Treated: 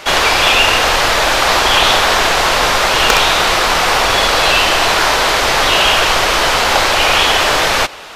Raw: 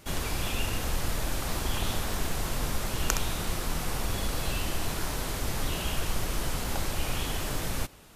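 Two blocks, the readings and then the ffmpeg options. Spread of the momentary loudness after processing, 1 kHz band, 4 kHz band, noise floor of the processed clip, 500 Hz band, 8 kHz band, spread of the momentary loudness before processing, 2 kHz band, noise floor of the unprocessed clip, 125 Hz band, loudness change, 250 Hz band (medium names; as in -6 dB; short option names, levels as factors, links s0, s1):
2 LU, +25.5 dB, +24.5 dB, -14 dBFS, +22.0 dB, +16.0 dB, 2 LU, +25.5 dB, -34 dBFS, +5.5 dB, +21.5 dB, +11.0 dB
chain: -filter_complex "[0:a]acrossover=split=470 5600:gain=0.0891 1 0.141[s0][s1][s2];[s0][s1][s2]amix=inputs=3:normalize=0,aeval=exprs='0.299*(abs(mod(val(0)/0.299+3,4)-2)-1)':c=same,apsyclip=23.7,volume=0.841"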